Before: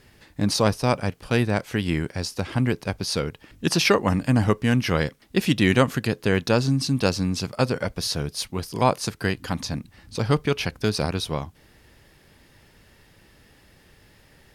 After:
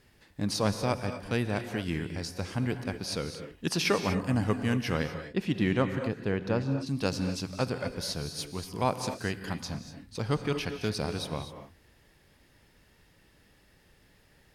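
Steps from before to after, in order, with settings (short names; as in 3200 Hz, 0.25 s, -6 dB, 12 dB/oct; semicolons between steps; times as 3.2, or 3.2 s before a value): 5.06–6.86 LPF 2500 Hz -> 1200 Hz 6 dB/oct; non-linear reverb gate 0.27 s rising, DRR 7.5 dB; gain -8 dB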